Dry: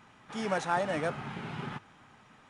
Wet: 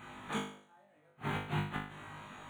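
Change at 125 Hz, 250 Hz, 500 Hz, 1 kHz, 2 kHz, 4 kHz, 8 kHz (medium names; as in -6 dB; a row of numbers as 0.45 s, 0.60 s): +0.5 dB, -3.5 dB, -12.5 dB, -7.5 dB, -5.5 dB, -2.5 dB, -6.5 dB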